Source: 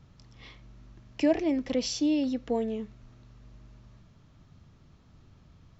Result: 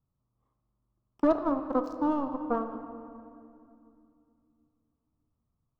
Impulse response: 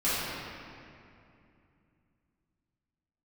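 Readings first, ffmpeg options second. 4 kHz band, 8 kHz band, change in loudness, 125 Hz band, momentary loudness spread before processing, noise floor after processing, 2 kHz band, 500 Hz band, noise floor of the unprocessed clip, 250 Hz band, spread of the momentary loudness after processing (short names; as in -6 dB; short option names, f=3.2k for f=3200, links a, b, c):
under -20 dB, n/a, -1.0 dB, -7.5 dB, 12 LU, -81 dBFS, -5.0 dB, 0.0 dB, -58 dBFS, -2.5 dB, 18 LU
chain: -filter_complex "[0:a]adynamicsmooth=sensitivity=6.5:basefreq=1.5k,aeval=exprs='0.224*(cos(1*acos(clip(val(0)/0.224,-1,1)))-cos(1*PI/2))+0.0224*(cos(5*acos(clip(val(0)/0.224,-1,1)))-cos(5*PI/2))+0.0501*(cos(7*acos(clip(val(0)/0.224,-1,1)))-cos(7*PI/2))':c=same,highshelf=f=1.6k:t=q:w=3:g=-11,asplit=2[a][b];[1:a]atrim=start_sample=2205,lowpass=6.8k[c];[b][c]afir=irnorm=-1:irlink=0,volume=-19dB[d];[a][d]amix=inputs=2:normalize=0,volume=-2.5dB"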